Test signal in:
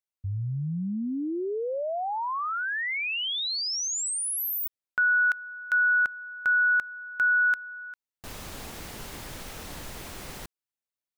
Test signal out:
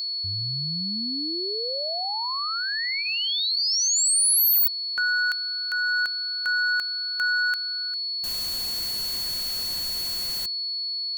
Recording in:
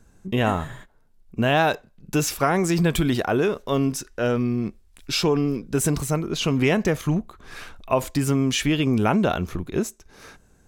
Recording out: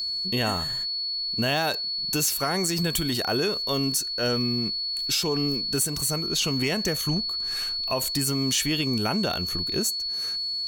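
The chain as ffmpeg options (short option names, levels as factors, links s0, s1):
-af "bandreject=f=2400:w=29,aeval=exprs='val(0)+0.0282*sin(2*PI*4400*n/s)':c=same,crystalizer=i=3.5:c=0,aeval=exprs='1*(cos(1*acos(clip(val(0)/1,-1,1)))-cos(1*PI/2))+0.0794*(cos(5*acos(clip(val(0)/1,-1,1)))-cos(5*PI/2))':c=same,alimiter=limit=0.398:level=0:latency=1:release=292,volume=0.447"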